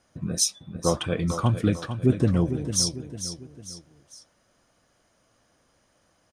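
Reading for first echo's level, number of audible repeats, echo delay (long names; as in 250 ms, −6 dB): −10.0 dB, 3, 450 ms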